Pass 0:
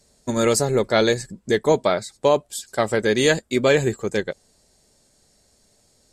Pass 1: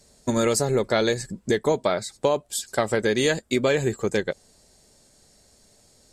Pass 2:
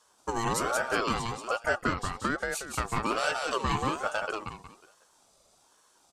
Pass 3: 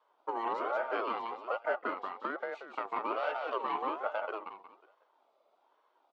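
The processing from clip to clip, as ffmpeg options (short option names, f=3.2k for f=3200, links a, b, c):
-af "acompressor=threshold=-23dB:ratio=3,volume=3dB"
-filter_complex "[0:a]asplit=2[a][b];[b]aecho=0:1:182|364|546|728:0.668|0.221|0.0728|0.024[c];[a][c]amix=inputs=2:normalize=0,aeval=exprs='val(0)*sin(2*PI*820*n/s+820*0.3/1.2*sin(2*PI*1.2*n/s))':c=same,volume=-5.5dB"
-af "aeval=exprs='if(lt(val(0),0),0.708*val(0),val(0))':c=same,highpass=f=320:w=0.5412,highpass=f=320:w=1.3066,equalizer=f=630:t=q:w=4:g=4,equalizer=f=920:t=q:w=4:g=4,equalizer=f=1.7k:t=q:w=4:g=-7,equalizer=f=2.6k:t=q:w=4:g=-4,lowpass=f=2.8k:w=0.5412,lowpass=f=2.8k:w=1.3066,volume=-3.5dB"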